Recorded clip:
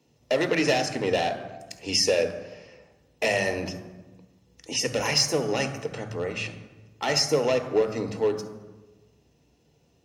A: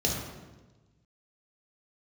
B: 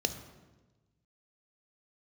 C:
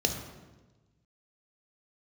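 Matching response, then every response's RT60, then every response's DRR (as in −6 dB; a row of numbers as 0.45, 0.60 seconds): B; 1.2, 1.2, 1.2 seconds; −2.5, 8.0, 3.5 decibels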